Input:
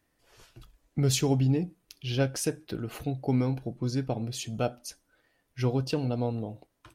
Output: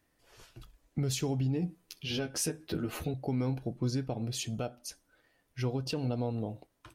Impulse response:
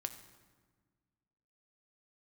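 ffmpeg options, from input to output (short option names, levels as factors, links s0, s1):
-filter_complex "[0:a]asettb=1/sr,asplit=3[s0][s1][s2];[s0]atrim=end=4.544[s3];[s1]atrim=start=4.54:end=5.86,asetpts=PTS-STARTPTS,afade=t=in:d=0.004:c=qsin,afade=t=out:st=1.316:d=0.004:c=qsin,acompressor=threshold=0.0126:ratio=1.5[s4];[s2]atrim=start=5.856[s5];[s3][s4]acrossfade=d=0.004:c1=hsin:c2=qsin[s6];[s6][s5]acrossfade=d=0.004:c1=qsin:c2=hsin,alimiter=limit=0.0708:level=0:latency=1:release=211,asettb=1/sr,asplit=3[s7][s8][s9];[s7]atrim=end=1.614[s10];[s8]atrim=start=1.61:end=3.14,asetpts=PTS-STARTPTS,afade=t=in:d=0.004:c=qsin,afade=t=out:st=1.526:d=0.004:c=qsin,asplit=2[s11][s12];[s12]adelay=12,volume=0.794[s13];[s11][s13]amix=inputs=2:normalize=0,atrim=end_sample=67473[s14];[s9]atrim=start=3.136[s15];[s10][s14]acrossfade=d=0.004:c1=hsin:c2=qsin[s16];[s16][s15]acrossfade=d=0.004:c1=qsin:c2=hsin"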